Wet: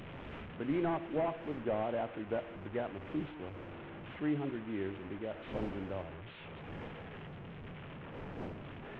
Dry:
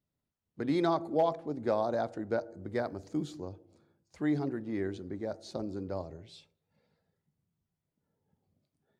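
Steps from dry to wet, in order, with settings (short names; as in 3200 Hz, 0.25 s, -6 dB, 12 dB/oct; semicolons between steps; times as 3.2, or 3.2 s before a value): delta modulation 16 kbps, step -37.5 dBFS; wind noise 450 Hz -48 dBFS; gain -4 dB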